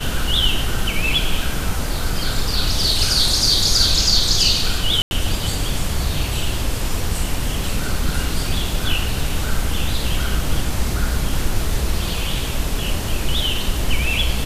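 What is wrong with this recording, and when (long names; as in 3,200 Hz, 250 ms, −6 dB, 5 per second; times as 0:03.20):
0:05.02–0:05.11: drop-out 91 ms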